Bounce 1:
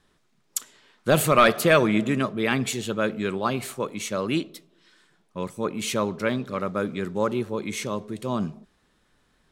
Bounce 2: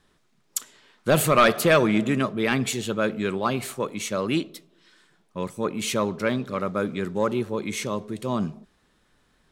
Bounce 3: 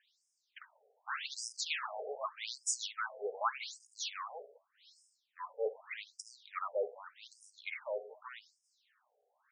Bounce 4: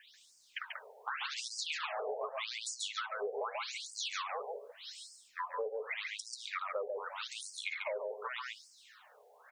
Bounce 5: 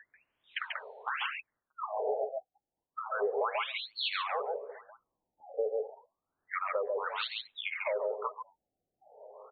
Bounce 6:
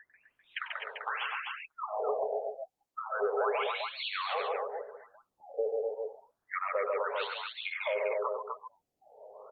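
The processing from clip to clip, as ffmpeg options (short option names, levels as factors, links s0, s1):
-af "acontrast=82,volume=0.501"
-af "highshelf=f=10000:g=10,asoftclip=type=tanh:threshold=0.0841,afftfilt=real='re*between(b*sr/1024,550*pow(7100/550,0.5+0.5*sin(2*PI*0.84*pts/sr))/1.41,550*pow(7100/550,0.5+0.5*sin(2*PI*0.84*pts/sr))*1.41)':imag='im*between(b*sr/1024,550*pow(7100/550,0.5+0.5*sin(2*PI*0.84*pts/sr))/1.41,550*pow(7100/550,0.5+0.5*sin(2*PI*0.84*pts/sr))*1.41)':win_size=1024:overlap=0.75,volume=0.794"
-filter_complex "[0:a]acrossover=split=440|3400[s0][s1][s2];[s0]acompressor=threshold=0.00708:ratio=4[s3];[s1]acompressor=threshold=0.00631:ratio=4[s4];[s2]acompressor=threshold=0.00158:ratio=4[s5];[s3][s4][s5]amix=inputs=3:normalize=0,aecho=1:1:138:0.596,acompressor=threshold=0.00224:ratio=3,volume=5.31"
-filter_complex "[0:a]alimiter=level_in=1.68:limit=0.0631:level=0:latency=1:release=283,volume=0.596,asplit=2[s0][s1];[s1]adelay=1341,volume=0.1,highshelf=f=4000:g=-30.2[s2];[s0][s2]amix=inputs=2:normalize=0,afftfilt=real='re*lt(b*sr/1024,800*pow(4500/800,0.5+0.5*sin(2*PI*0.31*pts/sr)))':imag='im*lt(b*sr/1024,800*pow(4500/800,0.5+0.5*sin(2*PI*0.31*pts/sr)))':win_size=1024:overlap=0.75,volume=2.24"
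-filter_complex "[0:a]acrossover=split=3300[s0][s1];[s1]acompressor=threshold=0.00562:ratio=4:attack=1:release=60[s2];[s0][s2]amix=inputs=2:normalize=0,aecho=1:1:96.21|253.6:0.282|0.631" -ar 48000 -c:a libopus -b:a 48k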